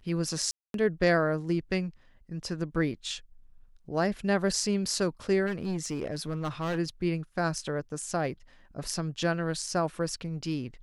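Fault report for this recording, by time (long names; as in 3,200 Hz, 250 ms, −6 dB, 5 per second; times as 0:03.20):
0:00.51–0:00.74: drop-out 232 ms
0:05.46–0:06.79: clipping −27 dBFS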